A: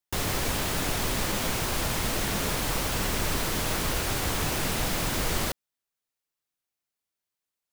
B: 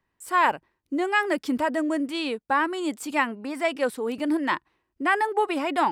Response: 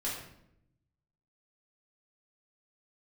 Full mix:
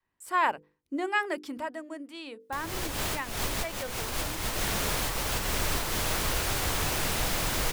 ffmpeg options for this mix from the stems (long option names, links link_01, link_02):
-filter_complex "[0:a]adelay=2400,volume=0dB[link_01];[1:a]bandreject=frequency=50:width_type=h:width=6,bandreject=frequency=100:width_type=h:width=6,bandreject=frequency=150:width_type=h:width=6,bandreject=frequency=200:width_type=h:width=6,bandreject=frequency=250:width_type=h:width=6,bandreject=frequency=300:width_type=h:width=6,bandreject=frequency=350:width_type=h:width=6,bandreject=frequency=400:width_type=h:width=6,bandreject=frequency=450:width_type=h:width=6,bandreject=frequency=500:width_type=h:width=6,volume=-4.5dB,afade=type=out:start_time=1.16:duration=0.68:silence=0.421697,afade=type=out:start_time=3.93:duration=0.67:silence=0.266073,asplit=2[link_02][link_03];[link_03]apad=whole_len=446675[link_04];[link_01][link_04]sidechaincompress=threshold=-44dB:ratio=12:attack=24:release=191[link_05];[link_05][link_02]amix=inputs=2:normalize=0,adynamicequalizer=threshold=0.00631:dfrequency=210:dqfactor=0.74:tfrequency=210:tqfactor=0.74:attack=5:release=100:ratio=0.375:range=2.5:mode=cutabove:tftype=bell"